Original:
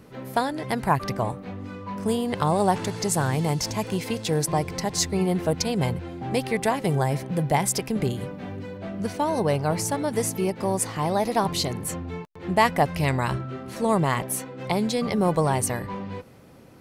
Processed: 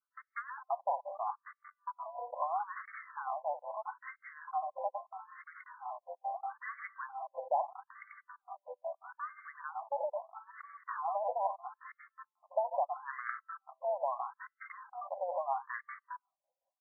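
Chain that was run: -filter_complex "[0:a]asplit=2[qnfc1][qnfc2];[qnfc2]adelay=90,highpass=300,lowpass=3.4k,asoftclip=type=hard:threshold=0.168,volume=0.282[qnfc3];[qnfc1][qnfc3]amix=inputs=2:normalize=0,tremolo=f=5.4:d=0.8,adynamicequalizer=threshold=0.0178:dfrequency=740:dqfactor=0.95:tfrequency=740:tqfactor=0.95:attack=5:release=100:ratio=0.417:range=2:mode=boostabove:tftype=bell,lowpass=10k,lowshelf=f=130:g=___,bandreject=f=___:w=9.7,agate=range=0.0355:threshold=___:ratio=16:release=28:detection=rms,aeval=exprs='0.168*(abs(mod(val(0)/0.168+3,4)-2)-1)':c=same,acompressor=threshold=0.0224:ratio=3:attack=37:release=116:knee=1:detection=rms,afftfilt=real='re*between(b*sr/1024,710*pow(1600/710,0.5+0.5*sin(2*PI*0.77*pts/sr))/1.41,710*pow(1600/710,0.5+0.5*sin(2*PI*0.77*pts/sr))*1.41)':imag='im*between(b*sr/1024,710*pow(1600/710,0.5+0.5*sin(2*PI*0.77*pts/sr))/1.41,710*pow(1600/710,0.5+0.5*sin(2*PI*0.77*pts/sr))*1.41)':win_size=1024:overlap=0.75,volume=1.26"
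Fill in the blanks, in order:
-9, 910, 0.0112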